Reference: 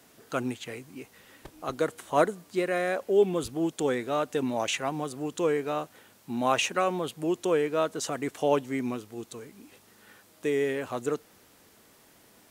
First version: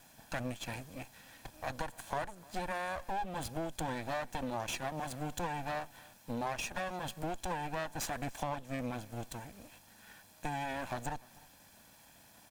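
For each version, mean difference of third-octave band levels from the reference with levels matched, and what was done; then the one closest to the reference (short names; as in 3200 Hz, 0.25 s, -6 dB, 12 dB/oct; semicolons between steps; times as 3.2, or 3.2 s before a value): 8.5 dB: minimum comb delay 1.2 ms; compressor 6:1, threshold -34 dBFS, peak gain reduction 14 dB; on a send: echo 0.3 s -23.5 dB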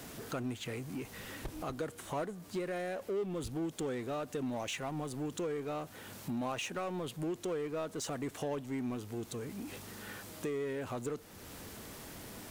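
6.5 dB: compressor 2.5:1, threshold -47 dBFS, peak gain reduction 19.5 dB; low shelf 160 Hz +11 dB; power-law curve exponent 0.7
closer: second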